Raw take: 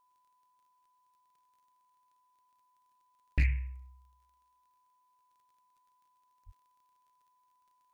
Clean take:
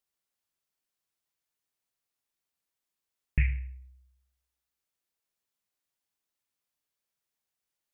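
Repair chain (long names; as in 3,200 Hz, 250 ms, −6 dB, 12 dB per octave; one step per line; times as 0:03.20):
clipped peaks rebuilt −20.5 dBFS
click removal
notch filter 1,000 Hz, Q 30
high-pass at the plosives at 0:06.45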